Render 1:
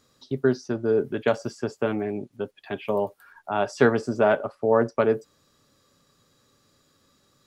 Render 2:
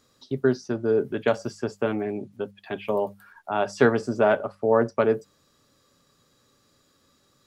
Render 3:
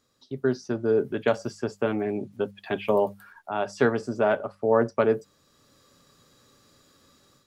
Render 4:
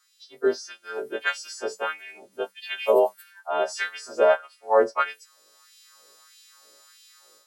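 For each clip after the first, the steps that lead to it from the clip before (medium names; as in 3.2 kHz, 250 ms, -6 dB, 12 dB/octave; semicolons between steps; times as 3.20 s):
hum notches 50/100/150/200 Hz
level rider gain up to 11.5 dB; trim -7 dB
partials quantised in pitch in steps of 2 st; LFO high-pass sine 1.6 Hz 440–2900 Hz; trim -1 dB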